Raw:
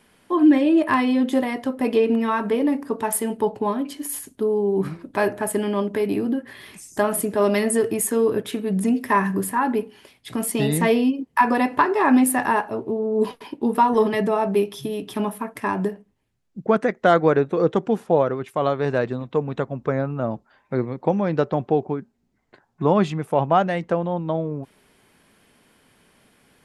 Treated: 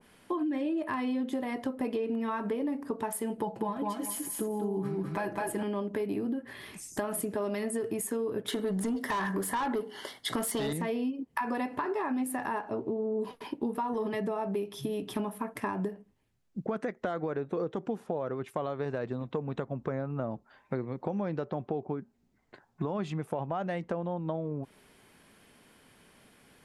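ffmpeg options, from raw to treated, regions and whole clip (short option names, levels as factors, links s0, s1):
-filter_complex "[0:a]asettb=1/sr,asplit=3[s0][s1][s2];[s0]atrim=end=3.374[s3];[s1]atrim=start=3.37:end=5.63,asetpts=PTS-STARTPTS,afade=t=in:d=0.004:c=qsin,afade=t=out:st=2.256:d=0.004:c=qsin,aecho=1:1:6:0.67,atrim=end_sample=99666,aecho=1:1:205|410|615:0.668|0.12|0.0217,atrim=end_sample=99666[s4];[s2]atrim=start=5.626[s5];[s3][s4]acrossfade=d=0.004:c1=hsin:c2=qsin[s6];[s6][s5]acrossfade=d=0.004:c1=qsin:c2=hsin,asettb=1/sr,asplit=3[s7][s8][s9];[s7]atrim=end=8.484[s10];[s8]atrim=start=8.48:end=10.73,asetpts=PTS-STARTPTS,afade=t=in:d=0.004:c=qsin,afade=t=out:st=2.246:d=0.004:c=qsin,asuperstop=centerf=2500:order=4:qfactor=3.5,asplit=2[s11][s12];[s12]highpass=f=720:p=1,volume=10,asoftclip=type=tanh:threshold=0.398[s13];[s11][s13]amix=inputs=2:normalize=0,lowpass=f=6600:p=1,volume=0.501[s14];[s9]atrim=start=10.726[s15];[s10][s14]acrossfade=d=0.004:c1=hsin:c2=qsin[s16];[s16][s15]acrossfade=d=0.004:c1=qsin:c2=hsin,asettb=1/sr,asplit=3[s17][s18][s19];[s17]atrim=end=12.594[s20];[s18]atrim=start=12.59:end=13.17,asetpts=PTS-STARTPTS,afade=t=in:d=0.004:c=qsin,afade=t=out:st=0.576:d=0.004:c=qsin,lowpass=f=8900:w=0.5412,lowpass=f=8900:w=1.3066,equalizer=f=290:t=o:w=0.36:g=3.5[s21];[s19]atrim=start=13.166[s22];[s20][s21]acrossfade=d=0.004:c1=hsin:c2=qsin[s23];[s23][s22]acrossfade=d=0.004:c1=qsin:c2=hsin,alimiter=limit=0.237:level=0:latency=1:release=56,acompressor=threshold=0.0398:ratio=6,adynamicequalizer=threshold=0.00398:dfrequency=1500:dqfactor=0.7:tfrequency=1500:tqfactor=0.7:attack=5:release=100:ratio=0.375:range=1.5:mode=cutabove:tftype=highshelf,volume=0.841"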